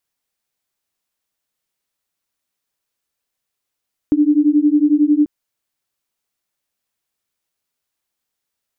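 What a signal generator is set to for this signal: beating tones 291 Hz, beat 11 Hz, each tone -13.5 dBFS 1.14 s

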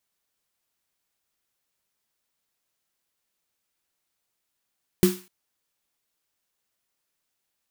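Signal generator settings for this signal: snare drum length 0.25 s, tones 190 Hz, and 360 Hz, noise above 920 Hz, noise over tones -11 dB, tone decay 0.27 s, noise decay 0.40 s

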